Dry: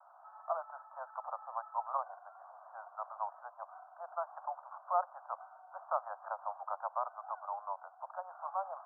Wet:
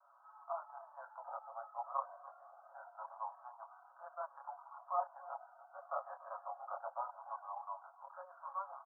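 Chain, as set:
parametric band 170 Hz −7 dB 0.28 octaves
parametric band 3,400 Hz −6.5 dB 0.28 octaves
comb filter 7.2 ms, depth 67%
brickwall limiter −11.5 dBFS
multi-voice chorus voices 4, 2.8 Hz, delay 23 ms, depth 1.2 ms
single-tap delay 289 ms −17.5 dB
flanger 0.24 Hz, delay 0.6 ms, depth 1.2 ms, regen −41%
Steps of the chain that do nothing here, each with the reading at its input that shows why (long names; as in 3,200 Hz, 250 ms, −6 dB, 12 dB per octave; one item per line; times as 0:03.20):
parametric band 170 Hz: nothing at its input below 480 Hz
parametric band 3,400 Hz: nothing at its input above 1,600 Hz
brickwall limiter −11.5 dBFS: peak of its input −17.0 dBFS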